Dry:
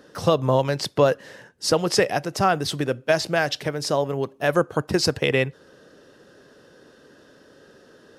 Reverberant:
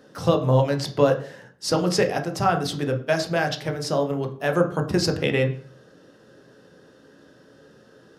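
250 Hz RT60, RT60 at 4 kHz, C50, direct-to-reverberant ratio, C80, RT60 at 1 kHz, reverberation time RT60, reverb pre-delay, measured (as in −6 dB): 0.50 s, 0.40 s, 11.5 dB, 4.0 dB, 16.0 dB, 0.40 s, 0.45 s, 10 ms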